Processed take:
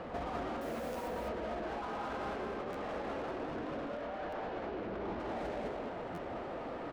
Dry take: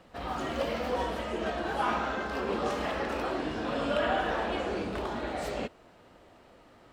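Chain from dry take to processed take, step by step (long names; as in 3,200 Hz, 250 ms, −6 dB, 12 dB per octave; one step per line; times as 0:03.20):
tilt shelving filter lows +9.5 dB, about 1,400 Hz
compressor whose output falls as the input rises −35 dBFS, ratio −1
mid-hump overdrive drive 21 dB, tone 2,400 Hz, clips at −30.5 dBFS
0:00.61–0:01.08: bit-depth reduction 8 bits, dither none
0:04.01–0:05.20: high-frequency loss of the air 86 metres
single-tap delay 206 ms −3 dB
buffer that repeats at 0:00.92/0:02.72/0:04.29/0:06.14, samples 512, times 2
level −6 dB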